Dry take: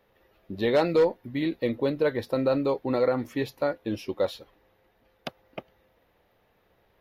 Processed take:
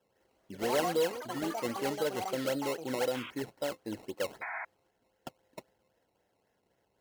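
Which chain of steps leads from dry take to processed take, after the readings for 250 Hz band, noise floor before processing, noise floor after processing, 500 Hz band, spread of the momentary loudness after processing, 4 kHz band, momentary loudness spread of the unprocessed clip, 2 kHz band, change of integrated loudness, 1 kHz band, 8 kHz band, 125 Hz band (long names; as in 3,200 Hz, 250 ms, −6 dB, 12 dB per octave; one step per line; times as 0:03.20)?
−8.5 dB, −67 dBFS, −77 dBFS, −8.0 dB, 21 LU, −1.0 dB, 19 LU, −2.5 dB, −7.5 dB, −2.0 dB, can't be measured, −10.5 dB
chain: sample-and-hold swept by an LFO 19×, swing 100% 3.8 Hz
sound drawn into the spectrogram noise, 0:04.41–0:04.65, 630–2,500 Hz −29 dBFS
notch comb filter 1,200 Hz
delay with pitch and tempo change per echo 202 ms, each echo +7 semitones, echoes 3, each echo −6 dB
level −8 dB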